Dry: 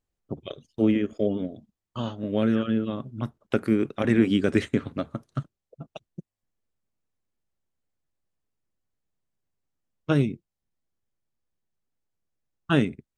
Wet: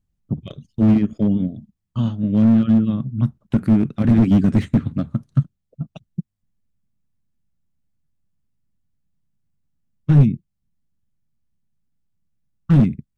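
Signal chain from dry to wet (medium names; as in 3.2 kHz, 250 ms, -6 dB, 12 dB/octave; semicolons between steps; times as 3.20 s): resonant low shelf 280 Hz +12.5 dB, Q 1.5; slew-rate limiter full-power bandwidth 77 Hz; trim -1 dB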